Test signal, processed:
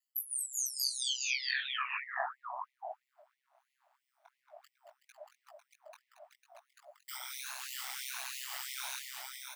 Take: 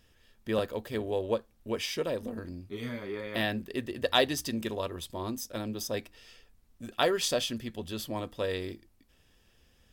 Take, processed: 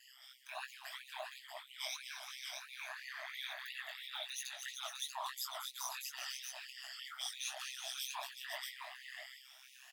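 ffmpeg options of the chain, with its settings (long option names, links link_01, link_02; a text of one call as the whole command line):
ffmpeg -i in.wav -af "afftfilt=real='re*pow(10,23/40*sin(2*PI*(1.5*log(max(b,1)*sr/1024/100)/log(2)-(1.3)*(pts-256)/sr)))':imag='im*pow(10,23/40*sin(2*PI*(1.5*log(max(b,1)*sr/1024/100)/log(2)-(1.3)*(pts-256)/sr)))':win_size=1024:overlap=0.75,equalizer=frequency=450:width_type=o:width=2.4:gain=-3.5,bandreject=frequency=50:width_type=h:width=6,bandreject=frequency=100:width_type=h:width=6,bandreject=frequency=150:width_type=h:width=6,bandreject=frequency=200:width_type=h:width=6,bandreject=frequency=250:width_type=h:width=6,bandreject=frequency=300:width_type=h:width=6,bandreject=frequency=350:width_type=h:width=6,bandreject=frequency=400:width_type=h:width=6,bandreject=frequency=450:width_type=h:width=6,bandreject=frequency=500:width_type=h:width=6,areverse,acompressor=threshold=-35dB:ratio=8,areverse,alimiter=level_in=11dB:limit=-24dB:level=0:latency=1:release=306,volume=-11dB,afftfilt=real='hypot(re,im)*cos(2*PI*random(0))':imag='hypot(re,im)*sin(2*PI*random(1))':win_size=512:overlap=0.75,aecho=1:1:227|375|500|633:0.376|0.316|0.355|0.596,tremolo=f=130:d=0.857,flanger=delay=16:depth=6.2:speed=2.9,afftfilt=real='re*gte(b*sr/1024,580*pow(1900/580,0.5+0.5*sin(2*PI*3*pts/sr)))':imag='im*gte(b*sr/1024,580*pow(1900/580,0.5+0.5*sin(2*PI*3*pts/sr)))':win_size=1024:overlap=0.75,volume=16.5dB" out.wav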